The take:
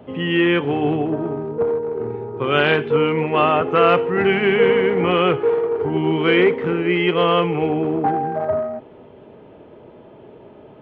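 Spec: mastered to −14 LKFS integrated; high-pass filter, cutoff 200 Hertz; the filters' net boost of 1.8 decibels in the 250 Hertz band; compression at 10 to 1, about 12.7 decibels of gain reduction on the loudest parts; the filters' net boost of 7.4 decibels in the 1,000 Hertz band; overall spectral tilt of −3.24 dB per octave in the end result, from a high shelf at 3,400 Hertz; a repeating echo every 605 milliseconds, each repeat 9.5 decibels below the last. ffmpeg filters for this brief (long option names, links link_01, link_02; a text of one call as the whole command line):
ffmpeg -i in.wav -af "highpass=200,equalizer=frequency=250:width_type=o:gain=3.5,equalizer=frequency=1000:width_type=o:gain=9,highshelf=frequency=3400:gain=7,acompressor=threshold=-19dB:ratio=10,aecho=1:1:605|1210|1815|2420:0.335|0.111|0.0365|0.012,volume=9dB" out.wav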